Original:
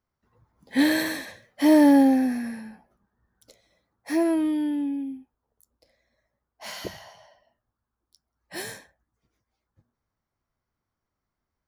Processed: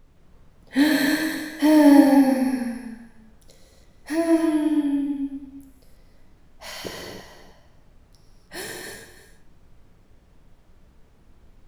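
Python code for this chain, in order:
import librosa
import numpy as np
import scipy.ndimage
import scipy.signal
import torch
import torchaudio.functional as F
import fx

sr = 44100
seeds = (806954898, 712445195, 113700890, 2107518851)

y = x + 10.0 ** (-14.0 / 20.0) * np.pad(x, (int(329 * sr / 1000.0), 0))[:len(x)]
y = fx.dmg_noise_colour(y, sr, seeds[0], colour='brown', level_db=-53.0)
y = fx.ripple_eq(y, sr, per_octave=0.85, db=8, at=(1.91, 2.61))
y = fx.rev_gated(y, sr, seeds[1], gate_ms=330, shape='flat', drr_db=0.0)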